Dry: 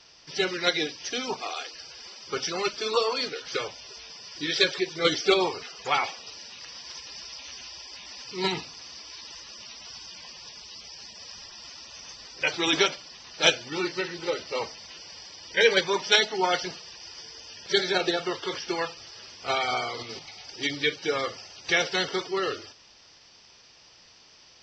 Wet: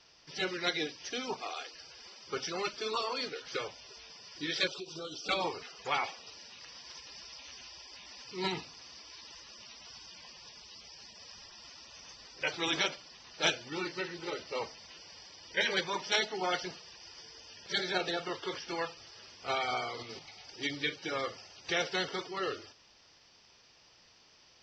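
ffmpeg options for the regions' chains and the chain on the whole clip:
ffmpeg -i in.wav -filter_complex "[0:a]asettb=1/sr,asplit=3[link_01][link_02][link_03];[link_01]atrim=end=4.674[link_04];[link_02]atrim=start=4.67:end=5.29,asetpts=PTS-STARTPTS,afade=type=in:duration=0.004:curve=qsin,afade=type=out:start_time=0.616:duration=0.004:curve=qsin,highshelf=frequency=7000:gain=10.5,acompressor=threshold=-31dB:ratio=12:attack=3.2:release=140:knee=1:detection=peak,asuperstop=centerf=1900:order=12:qfactor=1.9[link_05];[link_03]atrim=start=5.286[link_06];[link_04][link_05]acrossfade=duration=0.004:curve1=hsin:curve2=qsin[link_07];[link_07][link_06]acrossfade=duration=0.004:curve1=qsin:curve2=hsin,afftfilt=real='re*lt(hypot(re,im),0.501)':imag='im*lt(hypot(re,im),0.501)':win_size=1024:overlap=0.75,highshelf=frequency=4400:gain=-4.5,volume=-5.5dB" out.wav

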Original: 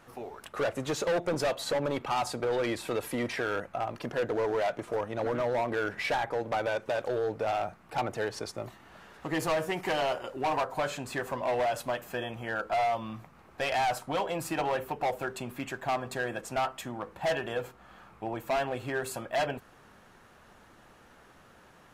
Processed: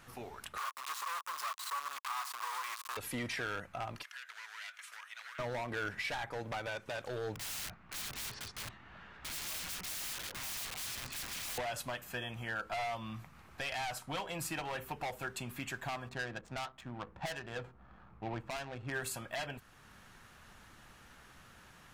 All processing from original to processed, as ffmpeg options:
ffmpeg -i in.wav -filter_complex "[0:a]asettb=1/sr,asplit=3[link_01][link_02][link_03];[link_01]atrim=end=0.584[link_04];[link_02]atrim=start=0.58:end=2.97,asetpts=PTS-STARTPTS,afade=type=in:duration=0.004:curve=qsin,afade=type=out:start_time=2.386:duration=0.004:curve=qsin,acrusher=bits=3:dc=4:mix=0:aa=0.000001,highpass=frequency=1100:width_type=q:width=10[link_05];[link_03]atrim=start=2.966[link_06];[link_04][link_05]acrossfade=duration=0.004:curve1=hsin:curve2=qsin[link_07];[link_07][link_06]acrossfade=duration=0.004:curve1=qsin:curve2=hsin,asettb=1/sr,asplit=3[link_08][link_09][link_10];[link_08]atrim=end=4.034[link_11];[link_09]atrim=start=4.03:end=5.39,asetpts=PTS-STARTPTS,afade=type=in:duration=0.004:curve=qsin,afade=type=out:start_time=1.356:duration=0.004:curve=qsin,highpass=frequency=1400:width=0.5412,highpass=frequency=1400:width=1.3066,acompressor=threshold=-45dB:ratio=3:attack=3.2:release=140:knee=1:detection=peak,asoftclip=type=hard:threshold=-36.5dB[link_12];[link_10]atrim=start=5.386[link_13];[link_11][link_12]acrossfade=duration=0.004:curve1=hsin:curve2=qsin[link_14];[link_14][link_13]acrossfade=duration=0.004:curve1=qsin:curve2=hsin,asettb=1/sr,asplit=3[link_15][link_16][link_17];[link_15]atrim=end=7.354[link_18];[link_16]atrim=start=7.35:end=11.58,asetpts=PTS-STARTPTS,afade=type=in:duration=0.004:curve=qsin,afade=type=out:start_time=4.226:duration=0.004:curve=qsin,lowpass=2700,aeval=exprs='(mod(89.1*val(0)+1,2)-1)/89.1':channel_layout=same[link_19];[link_17]atrim=start=11.576[link_20];[link_18][link_19]acrossfade=duration=0.004:curve1=hsin:curve2=qsin[link_21];[link_21][link_20]acrossfade=duration=0.004:curve1=qsin:curve2=hsin,asettb=1/sr,asplit=3[link_22][link_23][link_24];[link_22]atrim=end=16.094[link_25];[link_23]atrim=start=16.09:end=18.92,asetpts=PTS-STARTPTS,afade=type=in:duration=0.004:curve=qsin,afade=type=out:start_time=2.826:duration=0.004:curve=qsin,highshelf=frequency=4800:gain=10.5,adynamicsmooth=sensitivity=4:basefreq=870[link_26];[link_24]atrim=start=18.916[link_27];[link_25][link_26]acrossfade=duration=0.004:curve1=hsin:curve2=qsin[link_28];[link_28][link_27]acrossfade=duration=0.004:curve1=qsin:curve2=hsin,equalizer=frequency=480:width=0.52:gain=-11,alimiter=level_in=8dB:limit=-24dB:level=0:latency=1:release=499,volume=-8dB,volume=3.5dB" out.wav

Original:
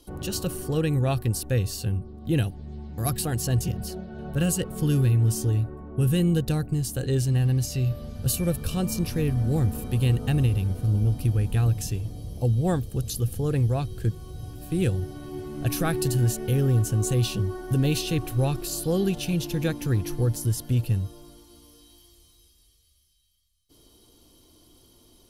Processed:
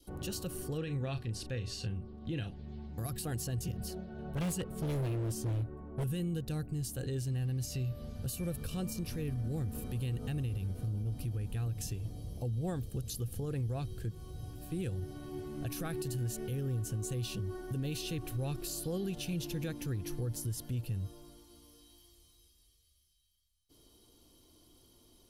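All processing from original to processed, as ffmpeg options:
ffmpeg -i in.wav -filter_complex "[0:a]asettb=1/sr,asplit=3[link_01][link_02][link_03];[link_01]atrim=end=0.784[link_04];[link_02]atrim=start=0.78:end=2.86,asetpts=PTS-STARTPTS,afade=type=in:duration=0.004:curve=qsin,afade=type=out:start_time=2.076:duration=0.004:curve=qsin,lowpass=3300,highshelf=frequency=2500:gain=11.5,asplit=2[link_05][link_06];[link_06]adelay=36,volume=-11dB[link_07];[link_05][link_07]amix=inputs=2:normalize=0,atrim=end_sample=91728[link_08];[link_03]atrim=start=2.856[link_09];[link_04][link_08]acrossfade=duration=0.004:curve1=hsin:curve2=qsin[link_10];[link_10][link_09]acrossfade=duration=0.004:curve1=qsin:curve2=hsin,asettb=1/sr,asplit=3[link_11][link_12][link_13];[link_11]atrim=end=4.134[link_14];[link_12]atrim=start=4.13:end=6.04,asetpts=PTS-STARTPTS,afade=type=in:duration=0.004:curve=qsin,afade=type=out:start_time=1.906:duration=0.004:curve=qsin,highshelf=frequency=4400:gain=-4.5,aeval=exprs='0.0944*(abs(mod(val(0)/0.0944+3,4)-2)-1)':channel_layout=same[link_15];[link_13]atrim=start=6.036[link_16];[link_14][link_15]acrossfade=duration=0.004:curve1=hsin:curve2=qsin[link_17];[link_17][link_16]acrossfade=duration=0.004:curve1=qsin:curve2=hsin,adynamicequalizer=threshold=0.00501:dfrequency=900:dqfactor=1.6:tfrequency=900:tqfactor=1.6:attack=5:release=100:ratio=0.375:range=2:mode=cutabove:tftype=bell,alimiter=limit=-22.5dB:level=0:latency=1:release=107,volume=-6.5dB" out.wav

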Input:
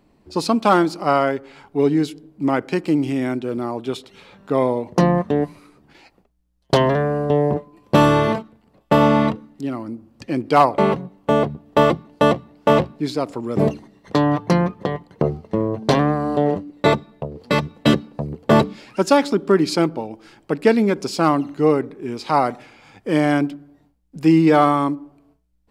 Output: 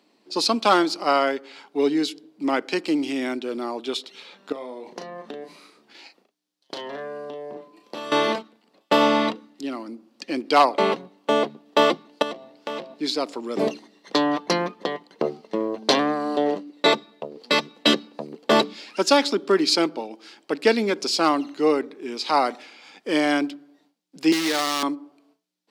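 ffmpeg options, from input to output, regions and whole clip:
ffmpeg -i in.wav -filter_complex "[0:a]asettb=1/sr,asplit=3[link_01][link_02][link_03];[link_01]atrim=end=4.524[link_04];[link_02]atrim=start=4.52:end=8.12,asetpts=PTS-STARTPTS,afade=type=in:duration=0.004:curve=qsin,afade=type=out:start_time=3.596:duration=0.004:curve=qsin,acompressor=threshold=-27dB:ratio=16:attack=3.2:release=140:knee=1:detection=peak,asplit=2[link_05][link_06];[link_06]adelay=36,volume=-6dB[link_07];[link_05][link_07]amix=inputs=2:normalize=0,atrim=end_sample=158760[link_08];[link_03]atrim=start=8.116[link_09];[link_04][link_08]acrossfade=duration=0.004:curve1=hsin:curve2=qsin[link_10];[link_10][link_09]acrossfade=duration=0.004:curve1=qsin:curve2=hsin,asettb=1/sr,asplit=3[link_11][link_12][link_13];[link_11]atrim=end=12.224[link_14];[link_12]atrim=start=12.22:end=12.94,asetpts=PTS-STARTPTS,afade=type=in:duration=0.004:curve=qsin,afade=type=out:start_time=0.716:duration=0.004:curve=qsin,bandreject=frequency=131.7:width_type=h:width=4,bandreject=frequency=263.4:width_type=h:width=4,bandreject=frequency=395.1:width_type=h:width=4,bandreject=frequency=526.8:width_type=h:width=4,bandreject=frequency=658.5:width_type=h:width=4,bandreject=frequency=790.2:width_type=h:width=4,bandreject=frequency=921.9:width_type=h:width=4,bandreject=frequency=1053.6:width_type=h:width=4,acompressor=threshold=-30dB:ratio=2.5:attack=3.2:release=140:knee=1:detection=peak[link_15];[link_13]atrim=start=12.936[link_16];[link_14][link_15]acrossfade=duration=0.004:curve1=hsin:curve2=qsin[link_17];[link_17][link_16]acrossfade=duration=0.004:curve1=qsin:curve2=hsin,asettb=1/sr,asplit=3[link_18][link_19][link_20];[link_18]atrim=end=24.324[link_21];[link_19]atrim=start=24.32:end=24.83,asetpts=PTS-STARTPTS,afade=type=in:duration=0.004:curve=qsin,afade=type=out:start_time=0.506:duration=0.004:curve=qsin,equalizer=frequency=1900:width=3.3:gain=11.5,acrossover=split=170|2000[link_22][link_23][link_24];[link_22]acompressor=threshold=-33dB:ratio=4[link_25];[link_23]acompressor=threshold=-21dB:ratio=4[link_26];[link_24]acompressor=threshold=-41dB:ratio=4[link_27];[link_25][link_26][link_27]amix=inputs=3:normalize=0,acrusher=bits=5:dc=4:mix=0:aa=0.000001[link_28];[link_20]atrim=start=24.826[link_29];[link_21][link_28]acrossfade=duration=0.004:curve1=hsin:curve2=qsin[link_30];[link_30][link_29]acrossfade=duration=0.004:curve1=qsin:curve2=hsin,highpass=frequency=240:width=0.5412,highpass=frequency=240:width=1.3066,equalizer=frequency=4300:width_type=o:width=1.7:gain=11,volume=-3.5dB" out.wav

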